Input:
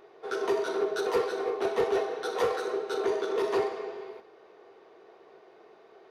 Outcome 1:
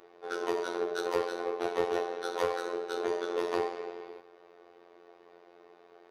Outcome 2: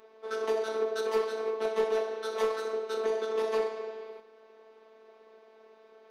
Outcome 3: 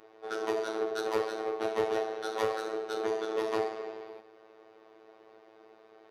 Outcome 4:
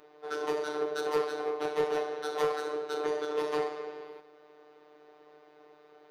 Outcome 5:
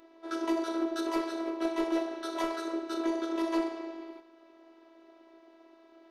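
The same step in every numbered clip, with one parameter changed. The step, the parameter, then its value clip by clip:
robotiser, frequency: 87, 220, 110, 150, 330 Hz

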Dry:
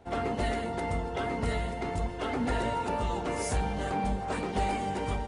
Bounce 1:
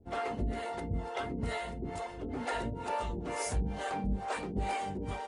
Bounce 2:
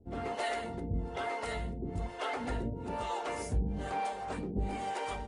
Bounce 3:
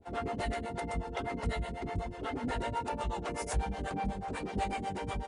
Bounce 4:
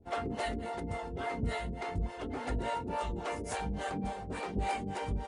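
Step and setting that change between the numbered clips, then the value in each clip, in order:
harmonic tremolo, rate: 2.2, 1.1, 8.1, 3.5 Hz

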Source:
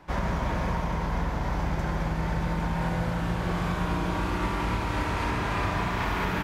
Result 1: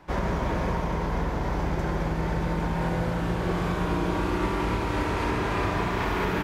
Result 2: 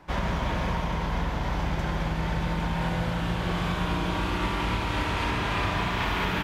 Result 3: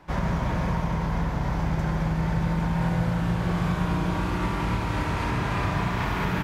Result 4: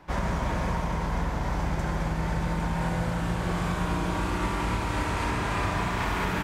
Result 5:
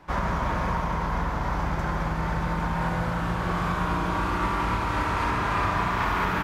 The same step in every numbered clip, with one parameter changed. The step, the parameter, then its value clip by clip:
dynamic EQ, frequency: 390, 3200, 140, 8300, 1200 Hz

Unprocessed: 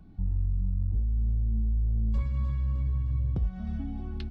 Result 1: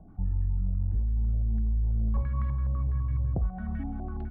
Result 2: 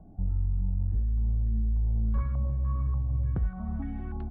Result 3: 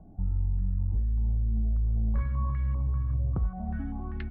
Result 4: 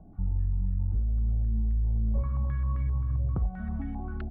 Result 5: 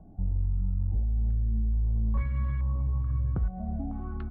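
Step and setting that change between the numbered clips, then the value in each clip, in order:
stepped low-pass, rate: 12, 3.4, 5.1, 7.6, 2.3 Hz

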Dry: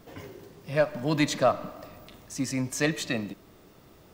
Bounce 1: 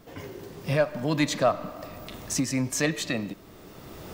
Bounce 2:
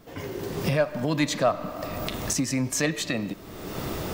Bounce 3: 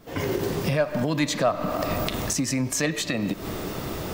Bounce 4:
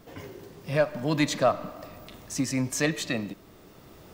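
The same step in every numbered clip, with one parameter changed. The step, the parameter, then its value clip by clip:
recorder AGC, rising by: 14, 34, 87, 5.3 dB/s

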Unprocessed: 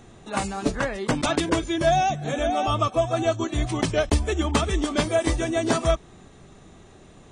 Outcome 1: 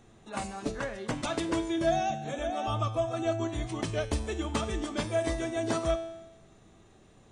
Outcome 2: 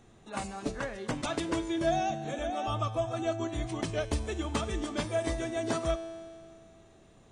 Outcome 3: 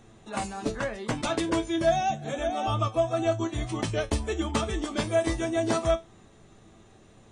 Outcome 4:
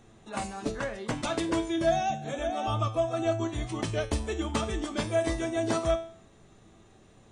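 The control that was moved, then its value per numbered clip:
resonator, decay: 1, 2.2, 0.19, 0.47 s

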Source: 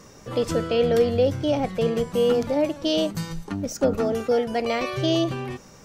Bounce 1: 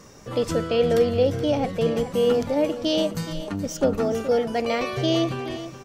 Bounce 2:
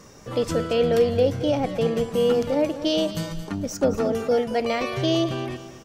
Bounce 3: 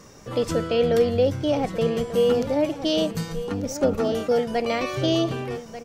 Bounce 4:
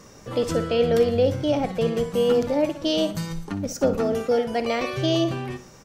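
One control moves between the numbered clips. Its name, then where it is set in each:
feedback echo, time: 423, 223, 1190, 60 ms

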